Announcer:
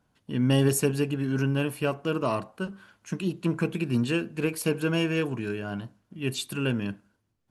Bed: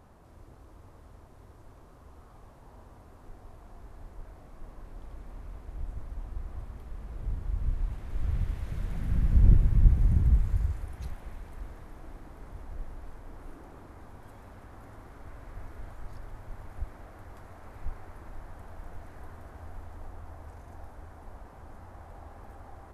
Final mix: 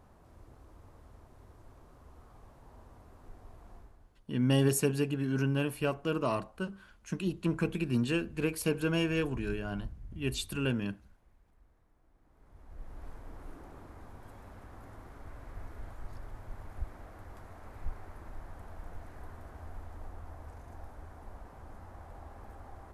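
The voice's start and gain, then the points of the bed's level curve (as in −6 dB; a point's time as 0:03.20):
4.00 s, −4.0 dB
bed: 0:03.76 −3 dB
0:04.26 −23 dB
0:12.11 −23 dB
0:13.04 −1.5 dB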